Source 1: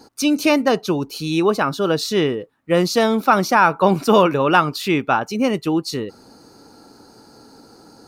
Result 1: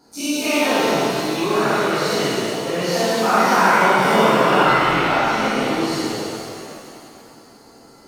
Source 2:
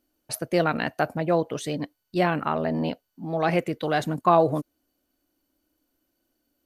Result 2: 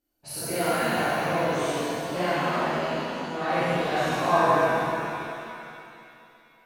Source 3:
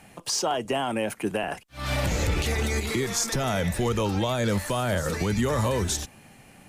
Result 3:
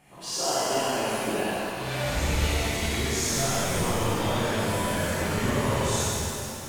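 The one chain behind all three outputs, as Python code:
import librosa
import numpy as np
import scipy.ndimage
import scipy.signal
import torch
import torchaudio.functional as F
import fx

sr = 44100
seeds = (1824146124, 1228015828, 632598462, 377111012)

y = fx.spec_dilate(x, sr, span_ms=120)
y = fx.buffer_glitch(y, sr, at_s=(4.65,), block=1024, repeats=10)
y = fx.rev_shimmer(y, sr, seeds[0], rt60_s=2.6, semitones=7, shimmer_db=-8, drr_db=-10.0)
y = y * 10.0 ** (-15.5 / 20.0)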